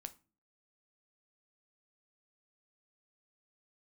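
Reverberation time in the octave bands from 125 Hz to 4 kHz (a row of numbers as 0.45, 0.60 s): 0.55, 0.60, 0.40, 0.30, 0.30, 0.25 s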